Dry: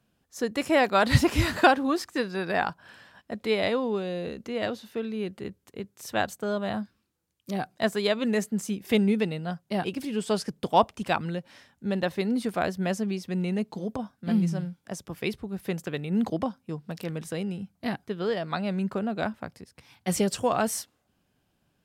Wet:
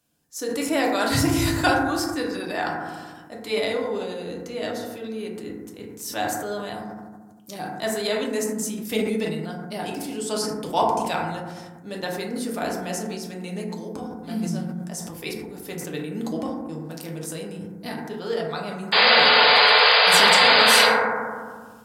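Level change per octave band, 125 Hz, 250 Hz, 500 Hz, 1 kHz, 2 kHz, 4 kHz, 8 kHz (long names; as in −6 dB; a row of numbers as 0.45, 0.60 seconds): −1.5, −0.5, +2.5, +6.5, +11.0, +16.0, +9.0 decibels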